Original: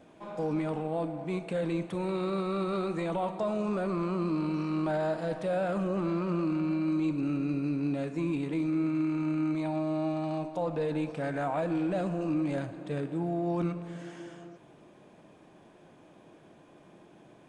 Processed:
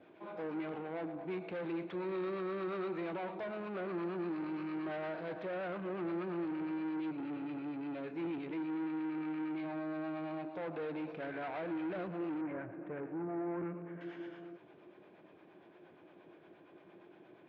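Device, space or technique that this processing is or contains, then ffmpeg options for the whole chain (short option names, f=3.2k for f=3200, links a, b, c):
guitar amplifier with harmonic tremolo: -filter_complex "[0:a]acrossover=split=540[a][b];[a]aeval=exprs='val(0)*(1-0.5/2+0.5/2*cos(2*PI*8.6*n/s))':c=same[c];[b]aeval=exprs='val(0)*(1-0.5/2-0.5/2*cos(2*PI*8.6*n/s))':c=same[d];[c][d]amix=inputs=2:normalize=0,asoftclip=type=tanh:threshold=-35dB,highpass=110,equalizer=f=140:t=q:w=4:g=-6,equalizer=f=230:t=q:w=4:g=-5,equalizer=f=360:t=q:w=4:g=7,equalizer=f=1.5k:t=q:w=4:g=4,equalizer=f=2.2k:t=q:w=4:g=4,lowpass=f=3.8k:w=0.5412,lowpass=f=3.8k:w=1.3066,asettb=1/sr,asplit=3[e][f][g];[e]atrim=end=12.414[h];[f]atrim=start=12.41:end=14.01,asetpts=PTS-STARTPTS,afade=t=in:d=0.004:c=qsin,afade=t=out:st=1.596:d=0.004:c=qsin,lowpass=f=2.1k:w=0.5412,lowpass=f=2.1k:w=1.3066[i];[g]atrim=start=14.006[j];[h][i]acrossfade=d=0.004:c1=hsin:c2=qsin[k];[k][j]acrossfade=d=0.004:c1=qsin:c2=hsin,volume=-2.5dB"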